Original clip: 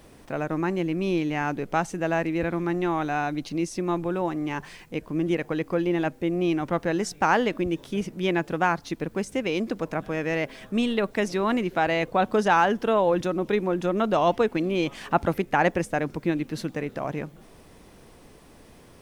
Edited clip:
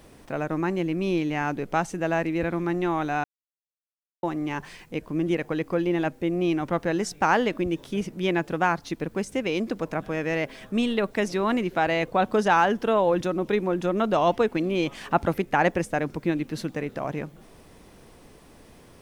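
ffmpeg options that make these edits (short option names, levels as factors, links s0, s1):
-filter_complex "[0:a]asplit=3[s0][s1][s2];[s0]atrim=end=3.24,asetpts=PTS-STARTPTS,afade=t=out:st=3.236:d=0.004:c=hsin[s3];[s1]atrim=start=3.24:end=4.23,asetpts=PTS-STARTPTS,volume=0[s4];[s2]atrim=start=4.23,asetpts=PTS-STARTPTS,afade=t=in:d=0.004:c=hsin[s5];[s3][s4][s5]concat=n=3:v=0:a=1"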